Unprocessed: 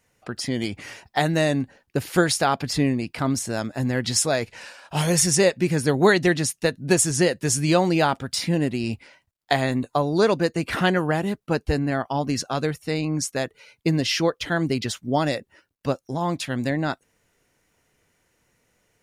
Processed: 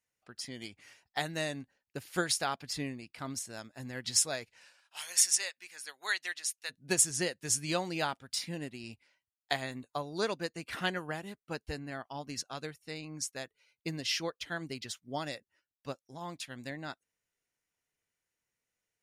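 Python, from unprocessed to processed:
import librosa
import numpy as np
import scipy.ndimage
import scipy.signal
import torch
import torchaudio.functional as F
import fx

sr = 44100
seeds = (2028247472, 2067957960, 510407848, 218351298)

y = fx.highpass(x, sr, hz=1200.0, slope=12, at=(4.8, 6.69), fade=0.02)
y = fx.tilt_shelf(y, sr, db=-4.5, hz=1200.0)
y = fx.upward_expand(y, sr, threshold_db=-41.0, expansion=1.5)
y = y * librosa.db_to_amplitude(-8.0)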